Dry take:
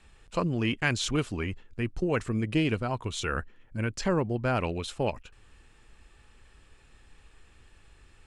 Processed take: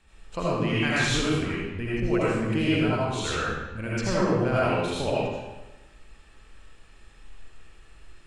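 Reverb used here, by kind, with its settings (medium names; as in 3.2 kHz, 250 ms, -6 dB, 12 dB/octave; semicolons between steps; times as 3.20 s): algorithmic reverb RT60 1.1 s, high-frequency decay 0.85×, pre-delay 40 ms, DRR -8 dB; trim -4 dB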